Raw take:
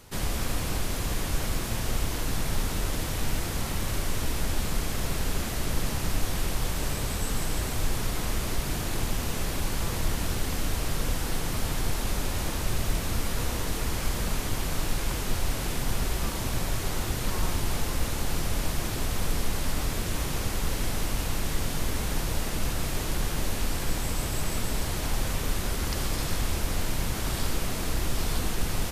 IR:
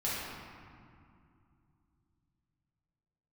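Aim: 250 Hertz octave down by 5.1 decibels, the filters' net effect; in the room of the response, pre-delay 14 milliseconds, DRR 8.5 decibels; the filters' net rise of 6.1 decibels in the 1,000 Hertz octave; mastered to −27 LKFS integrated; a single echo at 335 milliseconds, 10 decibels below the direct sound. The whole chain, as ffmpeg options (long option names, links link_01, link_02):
-filter_complex "[0:a]equalizer=frequency=250:width_type=o:gain=-8,equalizer=frequency=1000:width_type=o:gain=8,aecho=1:1:335:0.316,asplit=2[link_01][link_02];[1:a]atrim=start_sample=2205,adelay=14[link_03];[link_02][link_03]afir=irnorm=-1:irlink=0,volume=-15.5dB[link_04];[link_01][link_04]amix=inputs=2:normalize=0,volume=2dB"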